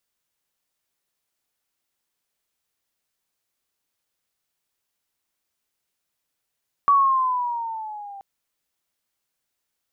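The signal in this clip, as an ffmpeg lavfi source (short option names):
-f lavfi -i "aevalsrc='pow(10,(-12-24*t/1.33)/20)*sin(2*PI*1140*1.33/(-6.5*log(2)/12)*(exp(-6.5*log(2)/12*t/1.33)-1))':d=1.33:s=44100"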